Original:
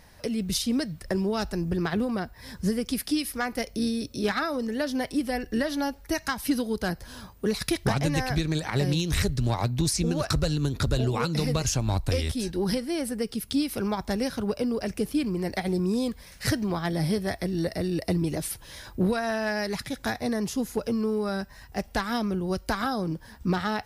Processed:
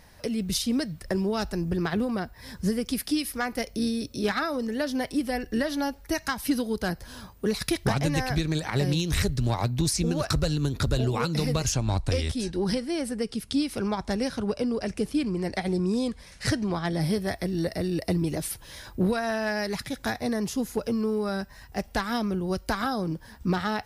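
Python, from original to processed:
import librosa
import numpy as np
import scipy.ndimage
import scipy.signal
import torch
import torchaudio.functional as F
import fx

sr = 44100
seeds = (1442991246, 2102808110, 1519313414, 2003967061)

y = fx.lowpass(x, sr, hz=10000.0, slope=24, at=(11.72, 17.01))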